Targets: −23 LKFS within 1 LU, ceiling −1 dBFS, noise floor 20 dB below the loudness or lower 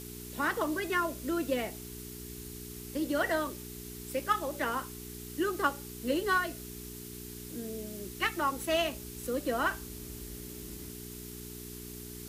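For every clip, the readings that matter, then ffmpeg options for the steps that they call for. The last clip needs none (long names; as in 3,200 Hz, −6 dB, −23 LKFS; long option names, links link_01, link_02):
mains hum 60 Hz; hum harmonics up to 420 Hz; level of the hum −43 dBFS; background noise floor −45 dBFS; target noise floor −55 dBFS; integrated loudness −34.5 LKFS; sample peak −14.5 dBFS; target loudness −23.0 LKFS
→ -af "bandreject=frequency=60:width_type=h:width=4,bandreject=frequency=120:width_type=h:width=4,bandreject=frequency=180:width_type=h:width=4,bandreject=frequency=240:width_type=h:width=4,bandreject=frequency=300:width_type=h:width=4,bandreject=frequency=360:width_type=h:width=4,bandreject=frequency=420:width_type=h:width=4"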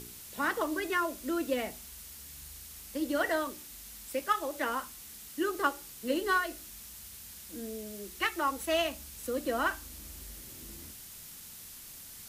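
mains hum none found; background noise floor −48 dBFS; target noise floor −54 dBFS
→ -af "afftdn=noise_reduction=6:noise_floor=-48"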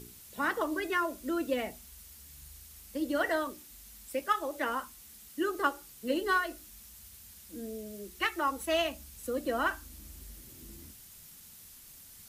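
background noise floor −53 dBFS; integrated loudness −33.0 LKFS; sample peak −14.5 dBFS; target loudness −23.0 LKFS
→ -af "volume=10dB"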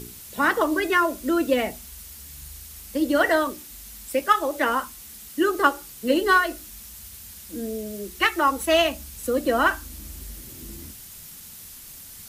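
integrated loudness −23.0 LKFS; sample peak −4.5 dBFS; background noise floor −43 dBFS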